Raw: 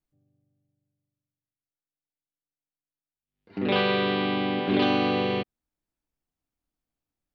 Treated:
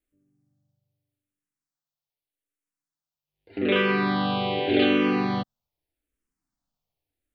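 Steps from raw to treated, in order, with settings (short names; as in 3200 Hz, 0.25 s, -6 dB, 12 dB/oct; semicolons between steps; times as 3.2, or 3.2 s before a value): endless phaser -0.83 Hz; gain +4.5 dB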